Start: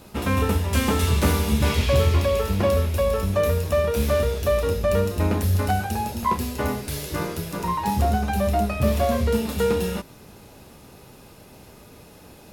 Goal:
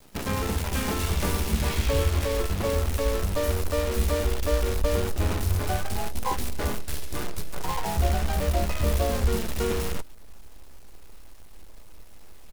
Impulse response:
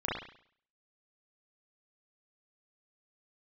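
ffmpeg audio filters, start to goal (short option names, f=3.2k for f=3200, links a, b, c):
-filter_complex "[0:a]acrusher=bits=5:dc=4:mix=0:aa=0.000001,asubboost=boost=7.5:cutoff=50,asplit=3[a][b][c];[b]asetrate=22050,aresample=44100,atempo=2,volume=-9dB[d];[c]asetrate=35002,aresample=44100,atempo=1.25992,volume=-4dB[e];[a][d][e]amix=inputs=3:normalize=0,volume=-7.5dB"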